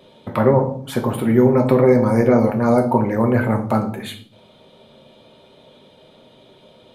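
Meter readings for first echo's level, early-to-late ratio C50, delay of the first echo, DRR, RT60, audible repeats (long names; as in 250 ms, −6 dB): no echo audible, 11.0 dB, no echo audible, 3.0 dB, 0.55 s, no echo audible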